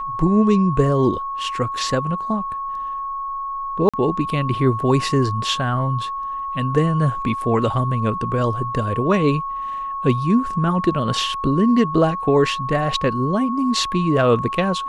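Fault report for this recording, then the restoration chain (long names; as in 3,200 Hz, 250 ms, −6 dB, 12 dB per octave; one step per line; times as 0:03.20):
whistle 1,100 Hz −24 dBFS
0:03.89–0:03.94: drop-out 46 ms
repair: notch filter 1,100 Hz, Q 30
repair the gap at 0:03.89, 46 ms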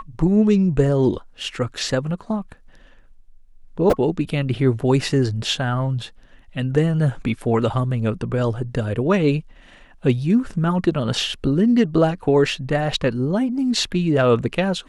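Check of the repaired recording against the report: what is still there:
none of them is left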